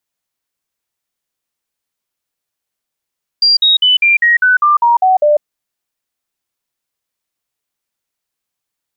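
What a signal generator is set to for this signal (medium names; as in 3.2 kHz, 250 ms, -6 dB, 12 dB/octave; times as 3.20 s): stepped sine 4.76 kHz down, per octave 3, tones 10, 0.15 s, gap 0.05 s -6.5 dBFS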